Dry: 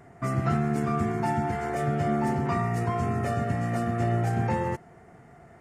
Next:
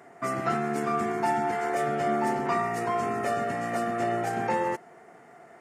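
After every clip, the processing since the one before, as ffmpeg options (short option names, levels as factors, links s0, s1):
-af "highpass=330,volume=1.41"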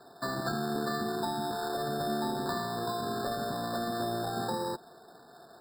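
-filter_complex "[0:a]acrusher=samples=15:mix=1:aa=0.000001,acrossover=split=320[s0][s1];[s1]acompressor=threshold=0.0398:ratio=6[s2];[s0][s2]amix=inputs=2:normalize=0,afftfilt=real='re*eq(mod(floor(b*sr/1024/1800),2),0)':imag='im*eq(mod(floor(b*sr/1024/1800),2),0)':win_size=1024:overlap=0.75,volume=0.794"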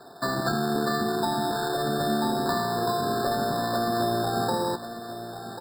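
-af "aecho=1:1:1091:0.282,volume=2.11"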